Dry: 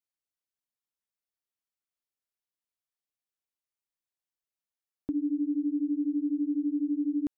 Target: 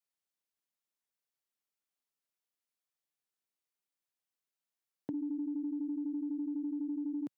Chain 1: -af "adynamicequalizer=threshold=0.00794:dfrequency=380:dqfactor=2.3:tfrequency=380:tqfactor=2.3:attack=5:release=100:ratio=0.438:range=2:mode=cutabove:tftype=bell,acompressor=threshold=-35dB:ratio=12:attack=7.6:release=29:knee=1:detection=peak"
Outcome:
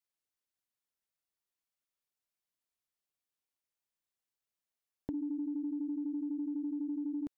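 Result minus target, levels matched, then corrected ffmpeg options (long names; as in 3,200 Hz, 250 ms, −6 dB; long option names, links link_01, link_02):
125 Hz band +3.0 dB
-af "adynamicequalizer=threshold=0.00794:dfrequency=380:dqfactor=2.3:tfrequency=380:tqfactor=2.3:attack=5:release=100:ratio=0.438:range=2:mode=cutabove:tftype=bell,acompressor=threshold=-35dB:ratio=12:attack=7.6:release=29:knee=1:detection=peak,highpass=frequency=130:width=0.5412,highpass=frequency=130:width=1.3066"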